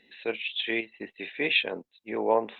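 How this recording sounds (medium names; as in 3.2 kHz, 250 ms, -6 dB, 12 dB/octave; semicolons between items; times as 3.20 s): chopped level 0.99 Hz, depth 60%, duty 80%; Opus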